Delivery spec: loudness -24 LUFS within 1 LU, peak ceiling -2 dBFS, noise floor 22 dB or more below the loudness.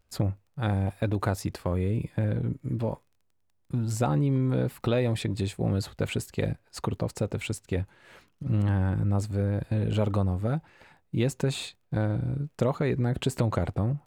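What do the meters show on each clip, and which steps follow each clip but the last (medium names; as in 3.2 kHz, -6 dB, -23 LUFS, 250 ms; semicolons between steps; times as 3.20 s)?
tick rate 20 per s; loudness -29.0 LUFS; peak level -13.0 dBFS; loudness target -24.0 LUFS
-> de-click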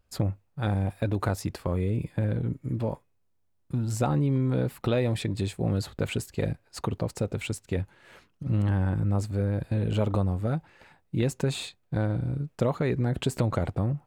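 tick rate 0.28 per s; loudness -29.0 LUFS; peak level -13.0 dBFS; loudness target -24.0 LUFS
-> trim +5 dB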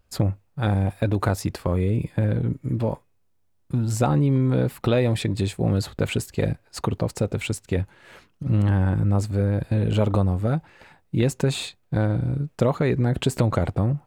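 loudness -24.0 LUFS; peak level -8.0 dBFS; noise floor -64 dBFS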